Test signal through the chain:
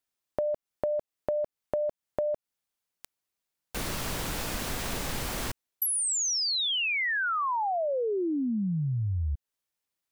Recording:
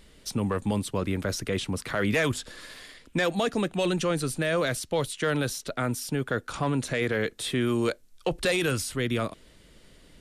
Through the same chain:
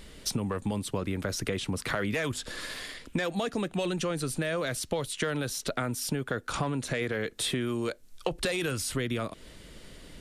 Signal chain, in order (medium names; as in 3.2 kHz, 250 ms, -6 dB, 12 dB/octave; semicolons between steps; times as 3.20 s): compression 10:1, threshold -33 dBFS; trim +6 dB